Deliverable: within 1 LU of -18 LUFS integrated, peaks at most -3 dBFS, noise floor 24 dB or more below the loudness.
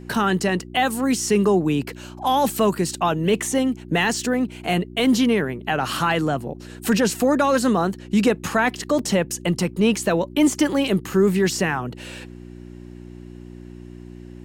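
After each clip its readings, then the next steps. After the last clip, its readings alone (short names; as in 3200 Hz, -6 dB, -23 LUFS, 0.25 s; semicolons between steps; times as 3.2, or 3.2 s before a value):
dropouts 1; longest dropout 2.6 ms; hum 60 Hz; harmonics up to 360 Hz; hum level -39 dBFS; loudness -21.0 LUFS; peak -7.5 dBFS; loudness target -18.0 LUFS
-> interpolate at 8.99, 2.6 ms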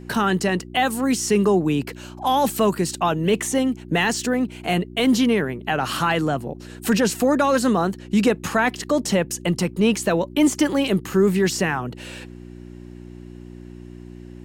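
dropouts 0; hum 60 Hz; harmonics up to 360 Hz; hum level -39 dBFS
-> de-hum 60 Hz, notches 6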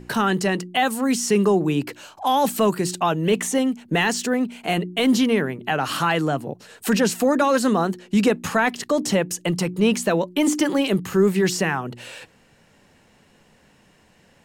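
hum none; loudness -21.5 LUFS; peak -7.5 dBFS; loudness target -18.0 LUFS
-> gain +3.5 dB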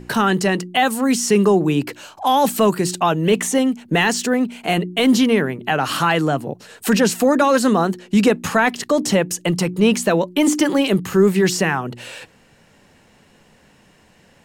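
loudness -18.0 LUFS; peak -4.0 dBFS; noise floor -53 dBFS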